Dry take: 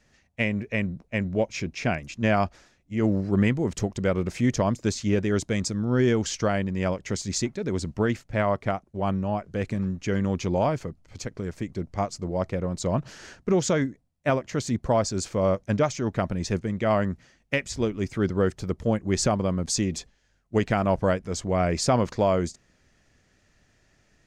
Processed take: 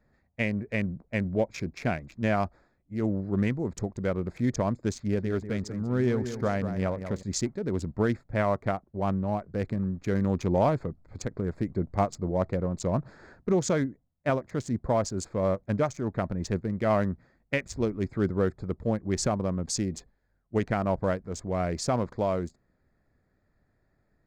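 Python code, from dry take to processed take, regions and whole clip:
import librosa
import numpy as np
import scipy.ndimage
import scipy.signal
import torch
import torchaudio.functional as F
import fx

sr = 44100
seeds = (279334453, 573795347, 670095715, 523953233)

y = fx.chain(x, sr, fx.air_absorb(metres=88.0),
    fx.notch(hz=330.0, q=8.6),
    fx.echo_feedback(ms=191, feedback_pct=34, wet_db=-9.5), at=(4.98, 7.23))
y = fx.wiener(y, sr, points=15)
y = fx.dynamic_eq(y, sr, hz=2900.0, q=4.4, threshold_db=-53.0, ratio=4.0, max_db=-5)
y = fx.rider(y, sr, range_db=10, speed_s=2.0)
y = y * 10.0 ** (-3.0 / 20.0)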